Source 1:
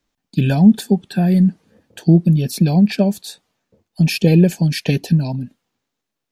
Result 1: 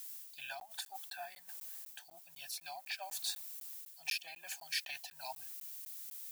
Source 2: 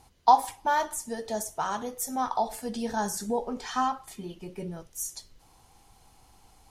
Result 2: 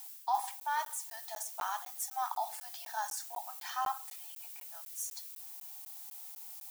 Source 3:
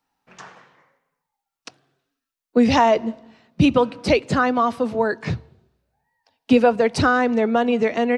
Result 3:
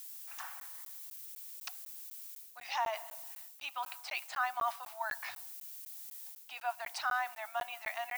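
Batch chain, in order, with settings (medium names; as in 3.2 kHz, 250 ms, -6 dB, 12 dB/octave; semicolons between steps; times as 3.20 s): added noise violet -42 dBFS; reverse; compression 6:1, threshold -23 dBFS; reverse; elliptic high-pass 730 Hz, stop band 40 dB; crackling interface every 0.25 s, samples 512, zero, from 0.60 s; trim -4.5 dB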